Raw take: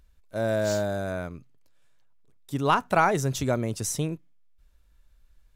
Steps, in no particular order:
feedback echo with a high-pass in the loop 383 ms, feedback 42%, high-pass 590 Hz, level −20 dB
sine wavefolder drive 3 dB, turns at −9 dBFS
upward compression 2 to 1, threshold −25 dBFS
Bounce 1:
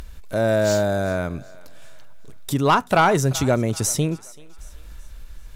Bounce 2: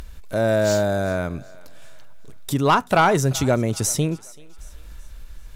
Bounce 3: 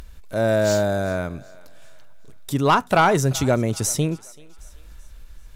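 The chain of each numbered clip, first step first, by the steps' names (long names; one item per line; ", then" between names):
upward compression, then feedback echo with a high-pass in the loop, then sine wavefolder
upward compression, then sine wavefolder, then feedback echo with a high-pass in the loop
sine wavefolder, then upward compression, then feedback echo with a high-pass in the loop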